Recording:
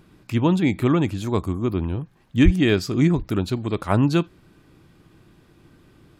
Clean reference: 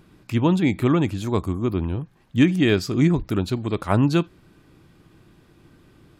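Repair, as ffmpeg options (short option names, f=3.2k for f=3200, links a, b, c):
-filter_complex "[0:a]asplit=3[a][b][c];[a]afade=t=out:st=2.44:d=0.02[d];[b]highpass=f=140:w=0.5412,highpass=f=140:w=1.3066,afade=t=in:st=2.44:d=0.02,afade=t=out:st=2.56:d=0.02[e];[c]afade=t=in:st=2.56:d=0.02[f];[d][e][f]amix=inputs=3:normalize=0"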